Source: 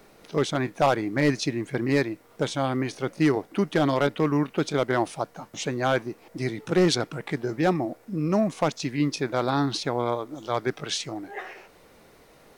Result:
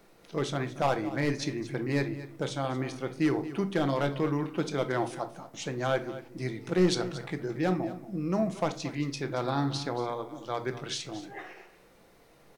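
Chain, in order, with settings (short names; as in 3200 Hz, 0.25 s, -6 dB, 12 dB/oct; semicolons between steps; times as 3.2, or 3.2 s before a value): echo 0.229 s -15 dB; shoebox room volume 360 m³, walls furnished, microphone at 0.77 m; gain -6.5 dB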